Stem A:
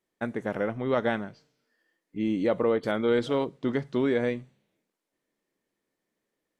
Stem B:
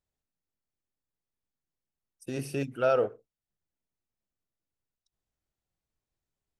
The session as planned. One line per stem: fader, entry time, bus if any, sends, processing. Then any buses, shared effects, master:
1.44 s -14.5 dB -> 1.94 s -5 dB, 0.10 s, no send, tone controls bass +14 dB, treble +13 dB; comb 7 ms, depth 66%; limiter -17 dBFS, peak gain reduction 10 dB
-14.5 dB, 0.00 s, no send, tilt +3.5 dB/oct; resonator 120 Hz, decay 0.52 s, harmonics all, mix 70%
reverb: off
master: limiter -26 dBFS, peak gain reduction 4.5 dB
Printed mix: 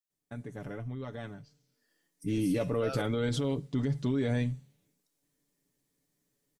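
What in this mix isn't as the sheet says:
stem B -14.5 dB -> -4.5 dB; master: missing limiter -26 dBFS, peak gain reduction 4.5 dB

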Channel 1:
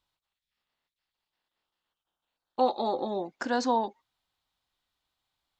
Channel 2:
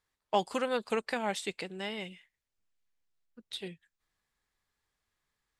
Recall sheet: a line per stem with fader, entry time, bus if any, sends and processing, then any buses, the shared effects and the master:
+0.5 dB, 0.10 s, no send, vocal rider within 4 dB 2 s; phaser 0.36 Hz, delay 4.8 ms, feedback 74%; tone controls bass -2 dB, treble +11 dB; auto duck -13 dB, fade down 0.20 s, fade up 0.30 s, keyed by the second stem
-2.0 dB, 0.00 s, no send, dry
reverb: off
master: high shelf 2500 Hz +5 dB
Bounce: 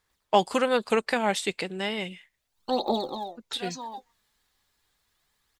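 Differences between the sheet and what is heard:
stem 2 -2.0 dB -> +7.5 dB; master: missing high shelf 2500 Hz +5 dB

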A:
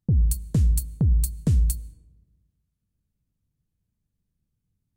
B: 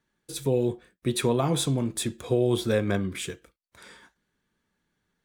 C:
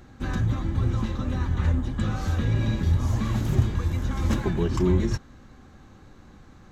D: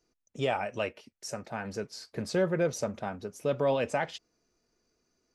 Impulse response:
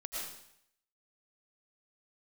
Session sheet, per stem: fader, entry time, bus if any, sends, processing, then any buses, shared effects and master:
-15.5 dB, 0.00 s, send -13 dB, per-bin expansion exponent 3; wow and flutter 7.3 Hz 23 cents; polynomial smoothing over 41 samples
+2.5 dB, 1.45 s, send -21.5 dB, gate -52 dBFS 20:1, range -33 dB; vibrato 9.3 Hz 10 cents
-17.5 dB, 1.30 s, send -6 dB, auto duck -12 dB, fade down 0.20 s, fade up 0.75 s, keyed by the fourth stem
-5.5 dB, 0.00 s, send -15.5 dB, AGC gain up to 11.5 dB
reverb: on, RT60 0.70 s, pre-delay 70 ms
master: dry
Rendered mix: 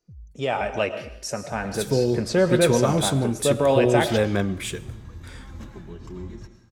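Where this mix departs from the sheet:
stem A -15.5 dB -> -22.5 dB; stem D: send -15.5 dB -> -7.5 dB

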